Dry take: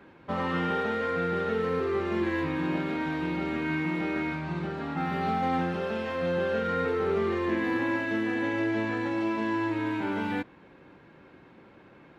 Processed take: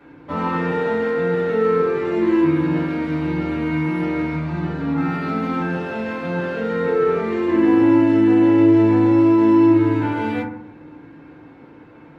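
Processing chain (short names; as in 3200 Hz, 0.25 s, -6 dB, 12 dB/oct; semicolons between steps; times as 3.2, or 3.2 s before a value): FDN reverb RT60 0.67 s, low-frequency decay 1.5×, high-frequency decay 0.3×, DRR -5 dB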